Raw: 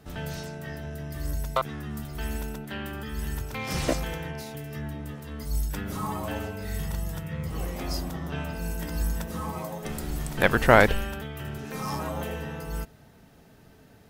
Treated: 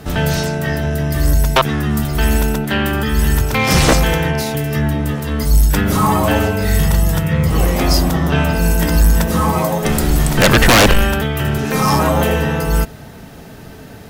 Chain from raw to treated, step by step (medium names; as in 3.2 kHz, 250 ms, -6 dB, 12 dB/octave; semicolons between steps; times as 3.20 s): sine folder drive 18 dB, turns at -1.5 dBFS; trim -3.5 dB